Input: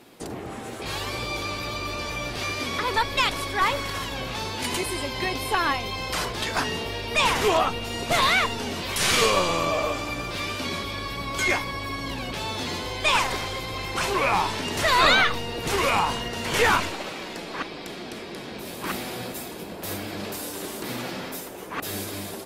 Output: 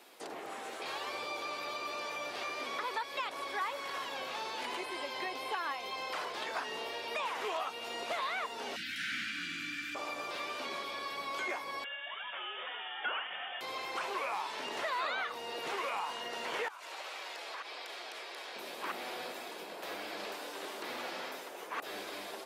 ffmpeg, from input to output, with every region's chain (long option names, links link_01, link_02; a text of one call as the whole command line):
ffmpeg -i in.wav -filter_complex "[0:a]asettb=1/sr,asplit=3[link_01][link_02][link_03];[link_01]atrim=end=8.764[link_04];[link_02]atrim=start=8.76:end=9.95,asetpts=PTS-STARTPTS,afade=type=in:duration=0.004:curve=qsin,afade=type=out:start_time=1.186:duration=0.004:curve=qsin,acontrast=33,aeval=exprs='clip(val(0),-1,0.106)':channel_layout=same,asuperstop=centerf=660:order=20:qfactor=0.59[link_05];[link_03]atrim=start=9.946[link_06];[link_04][link_05]acrossfade=duration=0.004:curve1=hsin:curve2=qsin[link_07];[link_07][link_06]acrossfade=duration=0.004:curve1=qsin:curve2=hsin,asettb=1/sr,asplit=3[link_08][link_09][link_10];[link_08]atrim=end=11.844[link_11];[link_09]atrim=start=11.84:end=13.61,asetpts=PTS-STARTPTS,afade=type=in:duration=0.004:curve=qsin,afade=type=out:start_time=1.766:duration=0.004:curve=qsin,highpass=790,lowpass=frequency=3300:width_type=q:width=0.5098,lowpass=frequency=3300:width_type=q:width=0.6013,lowpass=frequency=3300:width_type=q:width=0.9,lowpass=frequency=3300:width_type=q:width=2.563,afreqshift=-3900[link_12];[link_10]atrim=start=13.606[link_13];[link_11][link_12]acrossfade=duration=0.004:curve1=hsin:curve2=qsin[link_14];[link_14][link_13]acrossfade=duration=0.004:curve1=qsin:curve2=hsin,asettb=1/sr,asplit=3[link_15][link_16][link_17];[link_15]atrim=end=16.684[link_18];[link_16]atrim=start=16.68:end=18.56,asetpts=PTS-STARTPTS,afade=type=in:duration=0.004:curve=qsin,afade=type=out:start_time=1.876:duration=0.004:curve=qsin,highpass=520,acompressor=threshold=-34dB:ratio=10:attack=3.2:release=140:knee=1:detection=peak[link_19];[link_17]atrim=start=18.556[link_20];[link_18][link_19]acrossfade=duration=0.004:curve1=hsin:curve2=qsin[link_21];[link_21][link_20]acrossfade=duration=0.004:curve1=qsin:curve2=hsin,acrossover=split=4000[link_22][link_23];[link_23]acompressor=threshold=-40dB:ratio=4:attack=1:release=60[link_24];[link_22][link_24]amix=inputs=2:normalize=0,highpass=540,acrossover=split=1300|5900[link_25][link_26][link_27];[link_25]acompressor=threshold=-34dB:ratio=4[link_28];[link_26]acompressor=threshold=-39dB:ratio=4[link_29];[link_27]acompressor=threshold=-55dB:ratio=4[link_30];[link_28][link_29][link_30]amix=inputs=3:normalize=0,volume=-3.5dB" out.wav